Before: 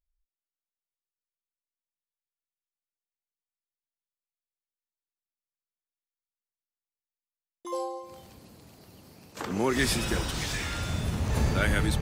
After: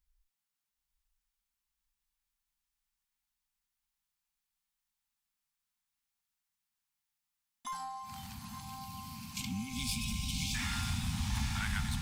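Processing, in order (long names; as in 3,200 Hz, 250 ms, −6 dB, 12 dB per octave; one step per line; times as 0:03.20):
one-sided soft clipper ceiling −23.5 dBFS
time-frequency box erased 0:08.62–0:10.55, 440–2,100 Hz
downward compressor 4 to 1, threshold −41 dBFS, peak gain reduction 15.5 dB
elliptic band-stop filter 240–790 Hz, stop band 40 dB
feedback delay with all-pass diffusion 955 ms, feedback 61%, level −5.5 dB
level +7 dB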